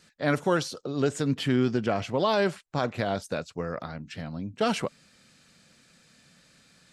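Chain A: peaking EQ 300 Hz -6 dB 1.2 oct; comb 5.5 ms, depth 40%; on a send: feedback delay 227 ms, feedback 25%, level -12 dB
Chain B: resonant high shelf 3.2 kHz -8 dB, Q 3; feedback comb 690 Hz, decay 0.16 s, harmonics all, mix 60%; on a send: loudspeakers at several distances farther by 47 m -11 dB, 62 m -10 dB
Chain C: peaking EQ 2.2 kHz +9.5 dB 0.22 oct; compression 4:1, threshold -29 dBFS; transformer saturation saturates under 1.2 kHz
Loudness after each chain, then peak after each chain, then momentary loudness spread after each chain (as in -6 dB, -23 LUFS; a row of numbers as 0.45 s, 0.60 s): -30.0 LUFS, -34.5 LUFS, -37.0 LUFS; -11.5 dBFS, -18.0 dBFS, -19.0 dBFS; 12 LU, 12 LU, 21 LU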